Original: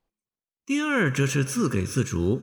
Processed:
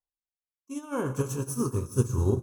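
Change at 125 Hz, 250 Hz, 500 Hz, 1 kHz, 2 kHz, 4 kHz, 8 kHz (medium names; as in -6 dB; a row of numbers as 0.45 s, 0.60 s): -2.0 dB, -6.5 dB, -3.0 dB, -5.5 dB, -18.5 dB, -15.5 dB, -5.0 dB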